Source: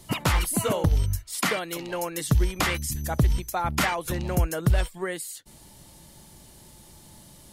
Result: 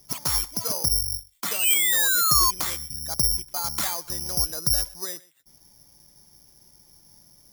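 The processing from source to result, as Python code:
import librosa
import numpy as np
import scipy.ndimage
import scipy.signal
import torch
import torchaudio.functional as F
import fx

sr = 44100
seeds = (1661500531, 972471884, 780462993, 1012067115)

y = x + 10.0 ** (-21.5 / 20.0) * np.pad(x, (int(125 * sr / 1000.0), 0))[:len(x)]
y = fx.spec_paint(y, sr, seeds[0], shape='fall', start_s=1.03, length_s=1.48, low_hz=1000.0, high_hz=5000.0, level_db=-19.0)
y = (np.kron(scipy.signal.resample_poly(y, 1, 8), np.eye(8)[0]) * 8)[:len(y)]
y = fx.dynamic_eq(y, sr, hz=1000.0, q=1.2, threshold_db=-45.0, ratio=4.0, max_db=5)
y = fx.band_widen(y, sr, depth_pct=100, at=(1.01, 1.74))
y = y * 10.0 ** (-11.5 / 20.0)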